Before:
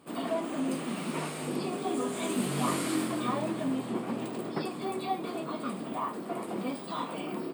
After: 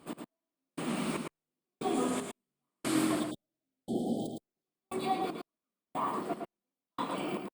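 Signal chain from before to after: spectral delete 3.2–4.66, 820–3000 Hz; step gate "x.....xx" 116 bpm -60 dB; echo 0.111 s -5 dB; Opus 64 kbps 48000 Hz

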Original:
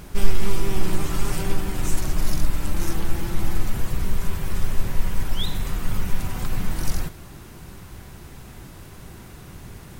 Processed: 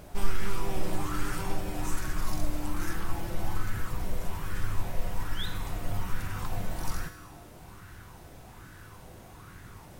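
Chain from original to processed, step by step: resonator 100 Hz, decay 1.3 s, harmonics odd, mix 80%; LFO bell 1.2 Hz 590–1600 Hz +11 dB; gain +4.5 dB

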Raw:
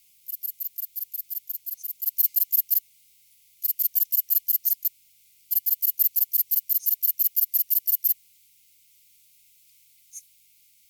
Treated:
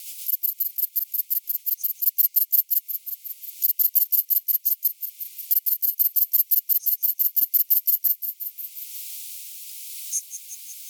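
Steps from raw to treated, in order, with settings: high shelf 2900 Hz +12 dB; rotary speaker horn 8 Hz, later 0.8 Hz, at 2.08; rippled Chebyshev high-pass 630 Hz, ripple 6 dB; short-mantissa float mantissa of 8-bit; on a send: thin delay 0.179 s, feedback 46%, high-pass 2100 Hz, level -12 dB; on the sum: three-band squash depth 70%

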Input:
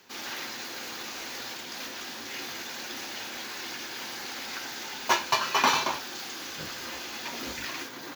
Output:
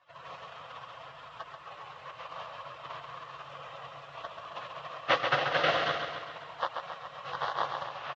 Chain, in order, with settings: rattling part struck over -44 dBFS, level -15 dBFS; spectral gate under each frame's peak -15 dB weak; resonant low shelf 480 Hz -6.5 dB, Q 3; notch 610 Hz, Q 12; in parallel at -10.5 dB: wavefolder -30.5 dBFS; on the sum: speaker cabinet 110–2700 Hz, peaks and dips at 140 Hz +8 dB, 210 Hz -10 dB, 340 Hz +6 dB, 500 Hz +4 dB, 1100 Hz +8 dB, 2200 Hz -8 dB; on a send: feedback echo 0.135 s, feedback 57%, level -6 dB; on the sum: gain +9 dB

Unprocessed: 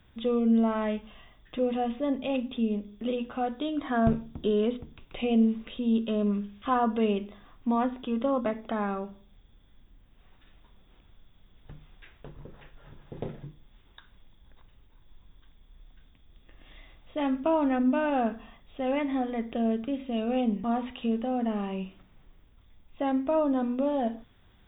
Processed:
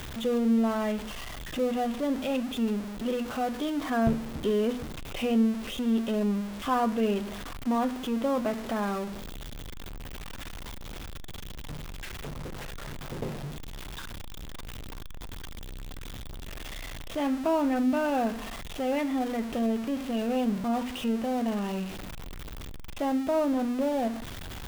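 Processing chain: zero-crossing step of -31.5 dBFS; gain -2 dB

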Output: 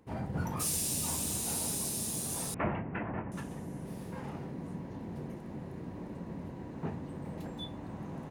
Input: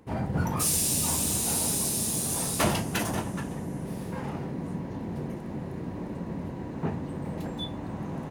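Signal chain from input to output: 2.54–3.32 steep low-pass 2400 Hz 48 dB/oct; gain -7 dB

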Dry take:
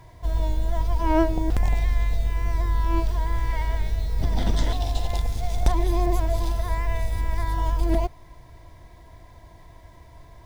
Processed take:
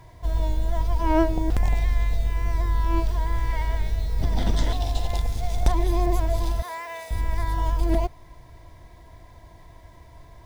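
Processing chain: 6.62–7.11 HPF 550 Hz 12 dB/oct

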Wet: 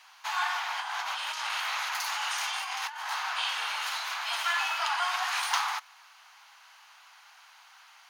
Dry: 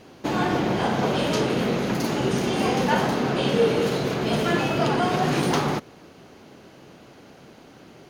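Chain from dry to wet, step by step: steep high-pass 870 Hz 48 dB/oct; 0.8–3.11 negative-ratio compressor -34 dBFS, ratio -1

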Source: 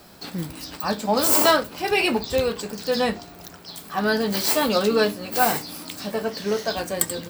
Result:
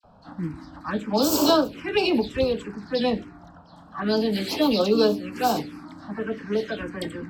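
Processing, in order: dispersion lows, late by 41 ms, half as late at 1800 Hz; envelope phaser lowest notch 320 Hz, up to 2000 Hz, full sweep at -16 dBFS; bell 300 Hz +7.5 dB 0.4 oct; low-pass opened by the level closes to 1300 Hz, open at -16 dBFS

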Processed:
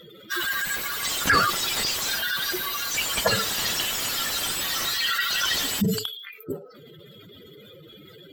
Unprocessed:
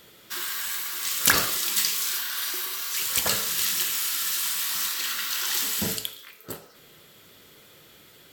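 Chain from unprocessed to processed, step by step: spectral contrast raised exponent 3; slew limiter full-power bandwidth 160 Hz; gain +6 dB

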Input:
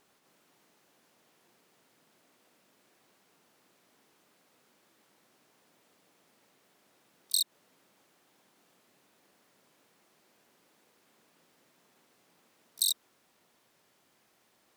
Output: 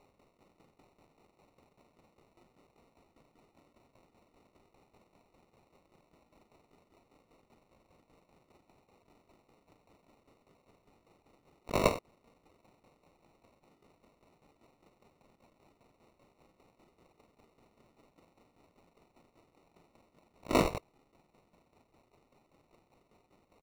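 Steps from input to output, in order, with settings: early reflections 35 ms -10.5 dB, 63 ms -12 dB; limiter -16.5 dBFS, peak gain reduction 3 dB; tremolo saw down 8.1 Hz, depth 80%; granular stretch 1.6×, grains 93 ms; sample-and-hold 27×; high shelf 6200 Hz -7 dB; gain +6 dB

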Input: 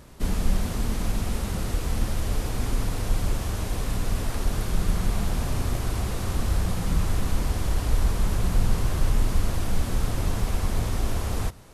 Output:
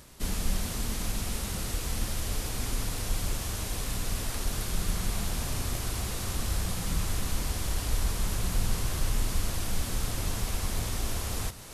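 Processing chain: high shelf 2100 Hz +10.5 dB; reverse; upward compressor, threshold -30 dBFS; reverse; gain -6.5 dB

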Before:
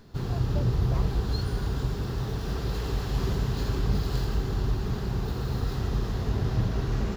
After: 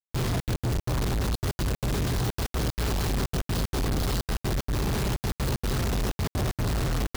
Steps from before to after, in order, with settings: step gate "xxxxx.x.xx.x" 189 bpm -60 dB; companded quantiser 2-bit

